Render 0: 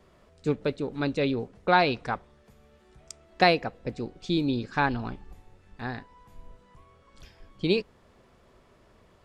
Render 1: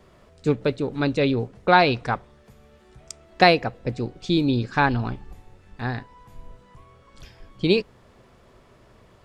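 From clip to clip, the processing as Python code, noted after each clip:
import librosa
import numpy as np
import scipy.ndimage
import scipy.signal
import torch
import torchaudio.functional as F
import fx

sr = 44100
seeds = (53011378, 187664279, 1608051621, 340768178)

y = fx.peak_eq(x, sr, hz=120.0, db=6.0, octaves=0.22)
y = F.gain(torch.from_numpy(y), 5.0).numpy()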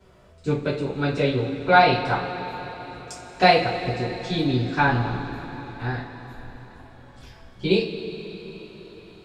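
y = fx.rev_double_slope(x, sr, seeds[0], early_s=0.31, late_s=4.9, knee_db=-19, drr_db=-8.0)
y = F.gain(torch.from_numpy(y), -8.5).numpy()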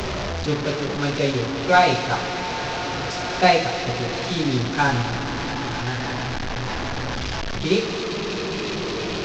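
y = fx.delta_mod(x, sr, bps=32000, step_db=-20.5)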